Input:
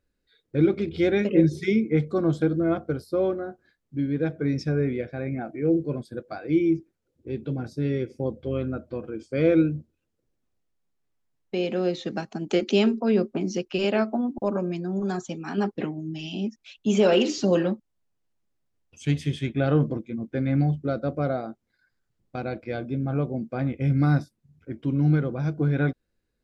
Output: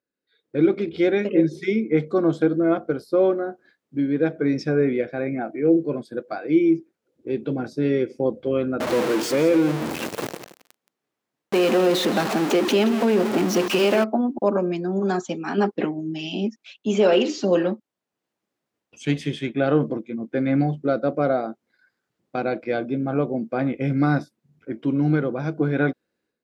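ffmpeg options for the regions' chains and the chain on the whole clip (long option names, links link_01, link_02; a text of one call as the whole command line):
ffmpeg -i in.wav -filter_complex "[0:a]asettb=1/sr,asplit=3[link_01][link_02][link_03];[link_01]atrim=end=8.804[link_04];[link_02]atrim=start=8.8:end=14.04,asetpts=PTS-STARTPTS,afade=type=in:duration=0.004:curve=qsin,afade=type=out:start_time=5.236:duration=0.004:curve=qsin,aeval=exprs='val(0)+0.5*0.0596*sgn(val(0))':channel_layout=same,acompressor=threshold=-21dB:ratio=2.5:attack=3.2:release=140:knee=1:detection=peak,aecho=1:1:174:0.211,atrim=end_sample=231084[link_05];[link_03]atrim=start=14.036[link_06];[link_04][link_05]acrossfade=duration=0.004:curve1=hsin:curve2=qsin[link_07];[link_07][link_06]acrossfade=duration=0.004:curve1=qsin:curve2=hsin,highpass=240,highshelf=frequency=4200:gain=-7,dynaudnorm=framelen=250:gausssize=3:maxgain=14dB,volume=-6dB" out.wav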